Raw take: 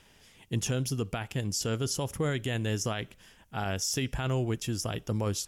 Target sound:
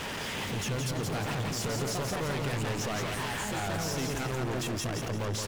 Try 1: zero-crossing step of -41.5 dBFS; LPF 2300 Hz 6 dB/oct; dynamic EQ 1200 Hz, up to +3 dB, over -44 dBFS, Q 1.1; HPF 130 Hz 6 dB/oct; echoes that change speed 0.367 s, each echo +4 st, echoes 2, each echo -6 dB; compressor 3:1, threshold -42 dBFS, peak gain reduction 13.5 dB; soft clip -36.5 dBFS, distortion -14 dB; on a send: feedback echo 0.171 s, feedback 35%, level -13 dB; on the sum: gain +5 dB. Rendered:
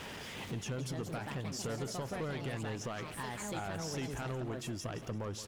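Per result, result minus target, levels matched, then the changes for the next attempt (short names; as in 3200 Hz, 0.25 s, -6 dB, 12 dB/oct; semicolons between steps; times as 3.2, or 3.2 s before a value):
compressor: peak gain reduction +13.5 dB; zero-crossing step: distortion -9 dB; echo-to-direct -8.5 dB
remove: compressor 3:1, threshold -42 dBFS, peak gain reduction 13.5 dB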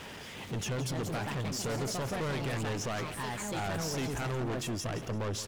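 zero-crossing step: distortion -9 dB; echo-to-direct -8.5 dB
change: zero-crossing step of -30 dBFS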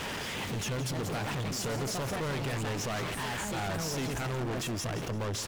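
echo-to-direct -8.5 dB
change: feedback echo 0.171 s, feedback 35%, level -4.5 dB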